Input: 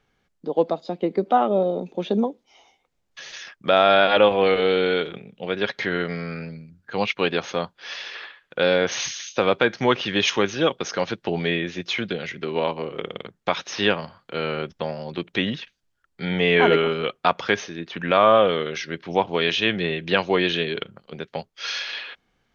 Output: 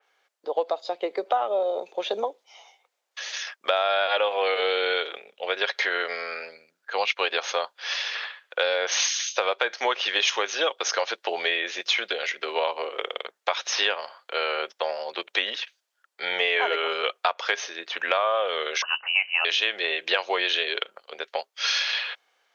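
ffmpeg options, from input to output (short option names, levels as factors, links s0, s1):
-filter_complex "[0:a]asettb=1/sr,asplit=3[s0][s1][s2];[s0]atrim=end=18.824[s3];[s1]atrim=start=18.82:end=19.45,asetpts=PTS-STARTPTS,afade=t=in:d=0.004:c=qsin,afade=t=out:st=0.626:d=0.004:c=qsin,lowpass=f=2600:t=q:w=0.5098,lowpass=f=2600:t=q:w=0.6013,lowpass=f=2600:t=q:w=0.9,lowpass=f=2600:t=q:w=2.563,afreqshift=-3100[s4];[s2]atrim=start=19.446[s5];[s3][s4]acrossfade=d=0.004:c1=hsin:c2=qsin[s6];[s6][s5]acrossfade=d=0.004:c1=qsin:c2=hsin,highpass=f=520:w=0.5412,highpass=f=520:w=1.3066,acompressor=threshold=0.0562:ratio=5,adynamicequalizer=threshold=0.0112:dfrequency=3100:dqfactor=0.7:tfrequency=3100:tqfactor=0.7:attack=5:release=100:ratio=0.375:range=1.5:mode=boostabove:tftype=highshelf,volume=1.58"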